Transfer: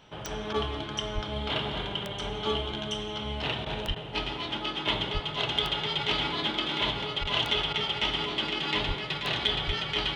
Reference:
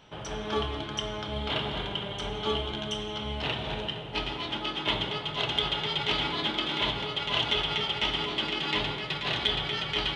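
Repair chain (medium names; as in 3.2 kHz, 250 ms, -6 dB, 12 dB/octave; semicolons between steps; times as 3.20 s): de-click; de-plosive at 1.14/3.87/5.13/7.20/8.87/9.66 s; interpolate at 0.53/3.65/3.95/7.24/7.73 s, 10 ms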